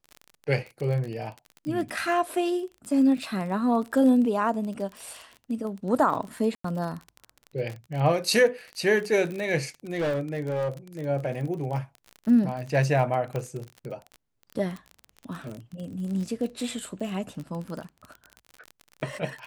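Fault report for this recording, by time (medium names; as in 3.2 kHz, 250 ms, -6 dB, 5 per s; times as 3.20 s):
crackle 32 per s -32 dBFS
3.23 s: dropout 2.5 ms
4.97 s: pop
6.55–6.64 s: dropout 94 ms
9.93–10.69 s: clipped -23.5 dBFS
13.36 s: pop -19 dBFS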